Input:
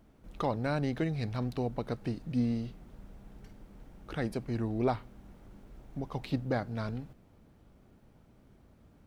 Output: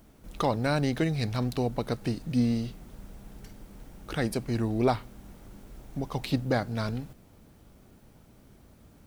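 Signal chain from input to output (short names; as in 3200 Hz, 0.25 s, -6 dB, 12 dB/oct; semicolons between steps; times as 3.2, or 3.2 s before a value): high shelf 4500 Hz +11.5 dB; gain +4.5 dB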